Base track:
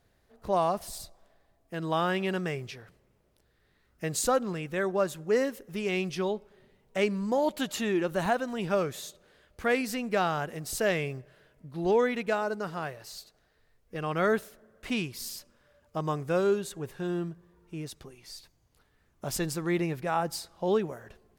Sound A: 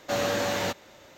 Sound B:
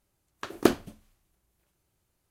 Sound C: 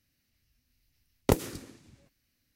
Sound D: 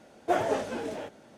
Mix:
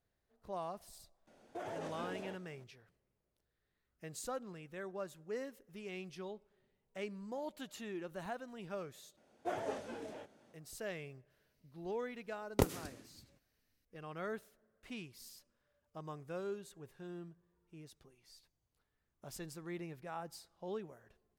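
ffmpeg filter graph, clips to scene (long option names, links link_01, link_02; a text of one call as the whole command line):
ffmpeg -i bed.wav -i cue0.wav -i cue1.wav -i cue2.wav -i cue3.wav -filter_complex "[4:a]asplit=2[link_01][link_02];[0:a]volume=-16dB[link_03];[link_01]alimiter=level_in=0.5dB:limit=-24dB:level=0:latency=1:release=68,volume=-0.5dB[link_04];[link_02]dynaudnorm=framelen=220:gausssize=3:maxgain=3.5dB[link_05];[link_03]asplit=2[link_06][link_07];[link_06]atrim=end=9.174[link_08];[link_05]atrim=end=1.37,asetpts=PTS-STARTPTS,volume=-15dB[link_09];[link_07]atrim=start=10.536[link_10];[link_04]atrim=end=1.37,asetpts=PTS-STARTPTS,volume=-10.5dB,afade=type=in:duration=0.004:curve=hsin,afade=type=out:start_time=1.366:duration=0.004:curve=hsin,adelay=1270[link_11];[3:a]atrim=end=2.55,asetpts=PTS-STARTPTS,volume=-6.5dB,afade=type=in:duration=0.004:curve=hsin,afade=type=out:start_time=2.546:duration=0.004:curve=hsin,adelay=498330S[link_12];[link_08][link_09]acrossfade=duration=0.004:curve1=hsin:curve2=hsin[link_13];[link_13][link_10]acrossfade=duration=0.004:curve1=hsin:curve2=hsin[link_14];[link_14][link_11][link_12]amix=inputs=3:normalize=0" out.wav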